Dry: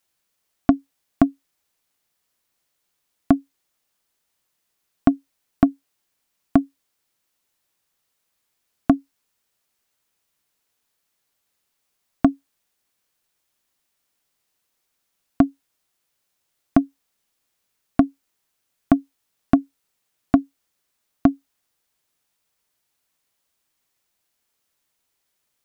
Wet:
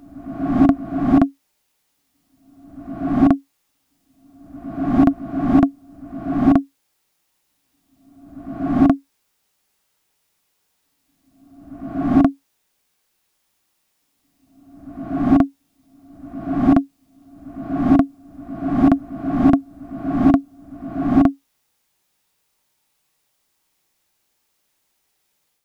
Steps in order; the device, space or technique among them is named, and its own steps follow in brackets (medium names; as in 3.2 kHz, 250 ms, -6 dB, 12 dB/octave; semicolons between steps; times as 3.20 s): reverse reverb (reverse; reverberation RT60 1.0 s, pre-delay 36 ms, DRR -4.5 dB; reverse)